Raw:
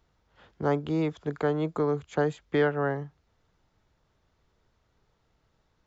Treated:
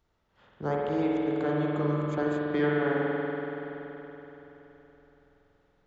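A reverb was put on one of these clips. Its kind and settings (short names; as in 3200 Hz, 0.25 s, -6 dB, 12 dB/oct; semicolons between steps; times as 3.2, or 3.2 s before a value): spring tank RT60 3.9 s, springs 47 ms, chirp 45 ms, DRR -5 dB; gain -5.5 dB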